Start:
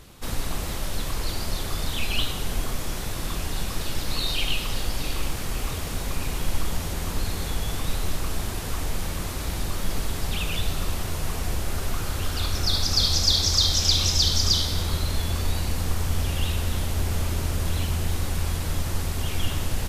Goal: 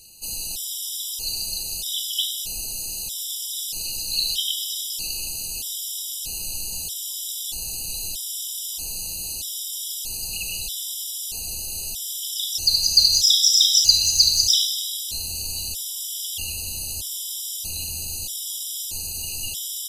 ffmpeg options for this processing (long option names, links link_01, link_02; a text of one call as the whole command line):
ffmpeg -i in.wav -af "afftfilt=real='re*(1-between(b*sr/4096,1000,2500))':imag='im*(1-between(b*sr/4096,1000,2500))':win_size=4096:overlap=0.75,aexciter=amount=12.4:drive=6.4:freq=2700,afftfilt=real='re*gt(sin(2*PI*0.79*pts/sr)*(1-2*mod(floor(b*sr/1024/990),2)),0)':imag='im*gt(sin(2*PI*0.79*pts/sr)*(1-2*mod(floor(b*sr/1024/990),2)),0)':win_size=1024:overlap=0.75,volume=-14dB" out.wav